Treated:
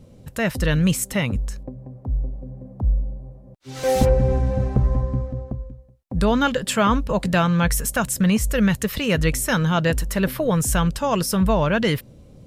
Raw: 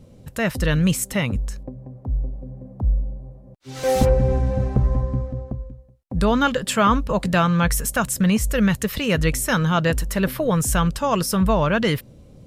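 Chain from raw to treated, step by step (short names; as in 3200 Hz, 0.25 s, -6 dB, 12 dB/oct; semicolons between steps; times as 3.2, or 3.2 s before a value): dynamic EQ 1200 Hz, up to -4 dB, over -36 dBFS, Q 4.4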